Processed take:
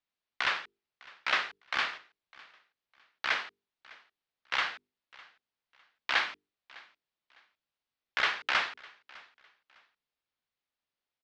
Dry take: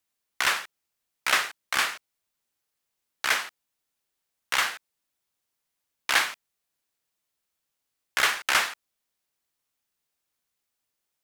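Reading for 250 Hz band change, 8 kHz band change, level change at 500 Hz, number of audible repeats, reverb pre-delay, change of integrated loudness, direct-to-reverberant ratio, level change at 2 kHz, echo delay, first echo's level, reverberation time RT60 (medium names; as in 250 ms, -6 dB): -6.0 dB, -20.0 dB, -5.0 dB, 2, no reverb, -6.0 dB, no reverb, -5.0 dB, 605 ms, -23.0 dB, no reverb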